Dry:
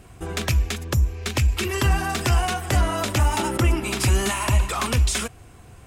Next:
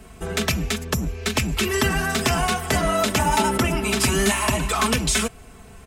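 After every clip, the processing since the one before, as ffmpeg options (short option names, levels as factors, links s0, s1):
-filter_complex "[0:a]aecho=1:1:4.6:0.72,acrossover=split=120|1400[s0][s1][s2];[s0]aeval=exprs='0.0841*(abs(mod(val(0)/0.0841+3,4)-2)-1)':c=same[s3];[s3][s1][s2]amix=inputs=3:normalize=0,volume=1.26"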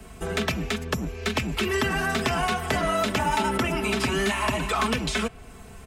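-filter_complex "[0:a]acrossover=split=200|1200|4200[s0][s1][s2][s3];[s0]acompressor=threshold=0.0251:ratio=4[s4];[s1]acompressor=threshold=0.0562:ratio=4[s5];[s2]acompressor=threshold=0.0447:ratio=4[s6];[s3]acompressor=threshold=0.00794:ratio=4[s7];[s4][s5][s6][s7]amix=inputs=4:normalize=0"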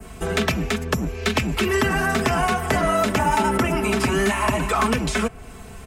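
-af "adynamicequalizer=threshold=0.00562:dfrequency=3600:dqfactor=1.2:tfrequency=3600:tqfactor=1.2:attack=5:release=100:ratio=0.375:range=3.5:mode=cutabove:tftype=bell,volume=1.78"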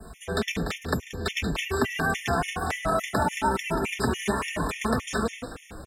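-filter_complex "[0:a]bandreject=f=48.48:t=h:w=4,bandreject=f=96.96:t=h:w=4,bandreject=f=145.44:t=h:w=4,bandreject=f=193.92:t=h:w=4,bandreject=f=242.4:t=h:w=4,bandreject=f=290.88:t=h:w=4,bandreject=f=339.36:t=h:w=4,bandreject=f=387.84:t=h:w=4,bandreject=f=436.32:t=h:w=4,bandreject=f=484.8:t=h:w=4,asplit=7[s0][s1][s2][s3][s4][s5][s6];[s1]adelay=182,afreqshift=33,volume=0.355[s7];[s2]adelay=364,afreqshift=66,volume=0.174[s8];[s3]adelay=546,afreqshift=99,volume=0.0851[s9];[s4]adelay=728,afreqshift=132,volume=0.0417[s10];[s5]adelay=910,afreqshift=165,volume=0.0204[s11];[s6]adelay=1092,afreqshift=198,volume=0.01[s12];[s0][s7][s8][s9][s10][s11][s12]amix=inputs=7:normalize=0,afftfilt=real='re*gt(sin(2*PI*3.5*pts/sr)*(1-2*mod(floor(b*sr/1024/1800),2)),0)':imag='im*gt(sin(2*PI*3.5*pts/sr)*(1-2*mod(floor(b*sr/1024/1800),2)),0)':win_size=1024:overlap=0.75,volume=0.668"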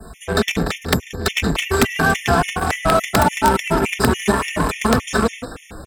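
-filter_complex "[0:a]asplit=2[s0][s1];[s1]acrusher=bits=3:mix=0:aa=0.5,volume=0.501[s2];[s0][s2]amix=inputs=2:normalize=0,aeval=exprs='(mod(3.16*val(0)+1,2)-1)/3.16':c=same,volume=2"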